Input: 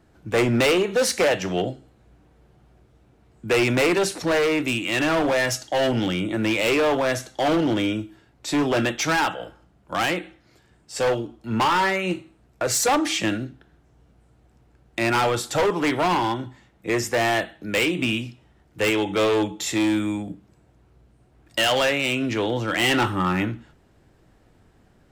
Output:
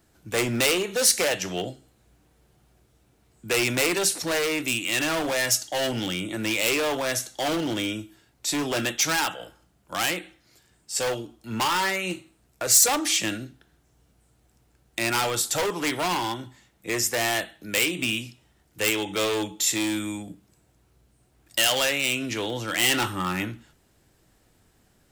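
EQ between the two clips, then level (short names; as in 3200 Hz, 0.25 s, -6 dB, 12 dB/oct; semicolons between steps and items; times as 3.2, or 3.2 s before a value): pre-emphasis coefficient 0.8; +7.5 dB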